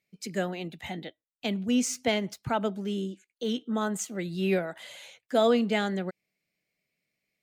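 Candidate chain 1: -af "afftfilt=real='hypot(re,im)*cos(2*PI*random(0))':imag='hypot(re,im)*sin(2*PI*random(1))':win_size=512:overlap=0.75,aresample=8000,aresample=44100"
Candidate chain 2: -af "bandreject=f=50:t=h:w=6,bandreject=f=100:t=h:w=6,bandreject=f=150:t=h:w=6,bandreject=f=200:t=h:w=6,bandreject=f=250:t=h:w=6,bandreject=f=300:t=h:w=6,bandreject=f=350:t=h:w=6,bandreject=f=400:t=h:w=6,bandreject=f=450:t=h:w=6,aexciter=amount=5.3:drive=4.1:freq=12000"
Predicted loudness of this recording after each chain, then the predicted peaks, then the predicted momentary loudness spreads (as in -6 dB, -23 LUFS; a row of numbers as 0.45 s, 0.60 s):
-36.0 LUFS, -30.0 LUFS; -16.5 dBFS, -12.5 dBFS; 14 LU, 13 LU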